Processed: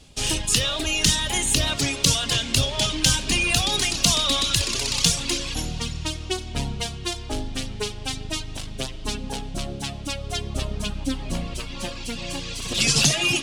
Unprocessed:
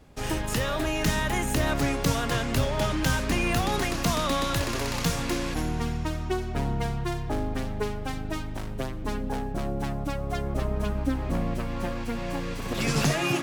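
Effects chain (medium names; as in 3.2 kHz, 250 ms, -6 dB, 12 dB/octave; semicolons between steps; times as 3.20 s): high-order bell 5.2 kHz +16 dB 2.3 oct; reverb removal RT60 1.8 s; bass shelf 190 Hz +5 dB; reverberation RT60 4.7 s, pre-delay 6 ms, DRR 11 dB; trim -1 dB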